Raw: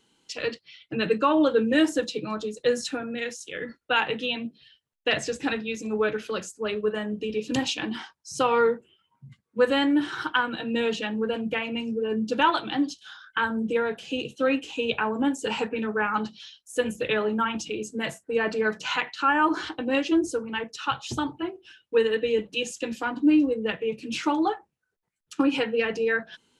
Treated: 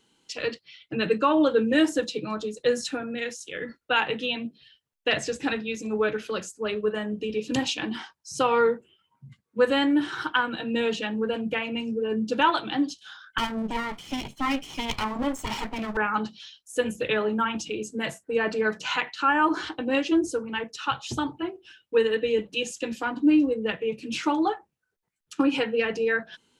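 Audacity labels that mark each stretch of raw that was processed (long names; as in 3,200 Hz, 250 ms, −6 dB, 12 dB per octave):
13.380000	15.970000	lower of the sound and its delayed copy delay 0.92 ms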